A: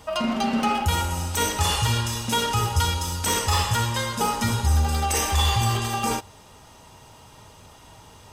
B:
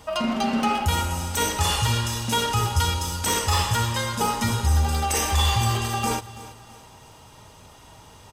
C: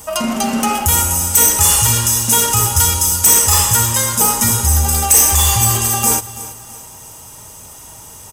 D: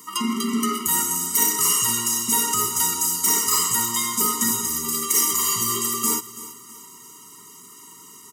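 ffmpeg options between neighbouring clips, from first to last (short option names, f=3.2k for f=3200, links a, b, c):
-af "aecho=1:1:331|662|993:0.141|0.0565|0.0226"
-af "aexciter=amount=8:drive=1.4:freq=5.9k,acontrast=72,volume=-1dB"
-af "highpass=f=190:w=0.5412,highpass=f=190:w=1.3066,afftfilt=real='re*eq(mod(floor(b*sr/1024/460),2),0)':imag='im*eq(mod(floor(b*sr/1024/460),2),0)':win_size=1024:overlap=0.75,volume=-3.5dB"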